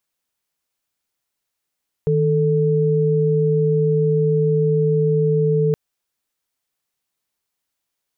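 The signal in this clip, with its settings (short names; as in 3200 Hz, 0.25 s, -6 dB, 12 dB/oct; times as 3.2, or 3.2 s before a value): chord D#3/A4 sine, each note -17 dBFS 3.67 s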